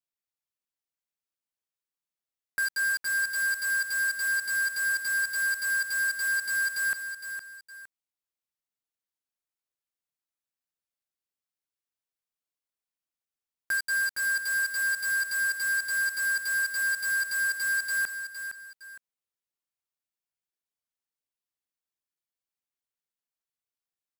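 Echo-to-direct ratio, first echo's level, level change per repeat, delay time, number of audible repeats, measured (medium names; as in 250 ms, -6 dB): -8.5 dB, -9.0 dB, -10.0 dB, 462 ms, 2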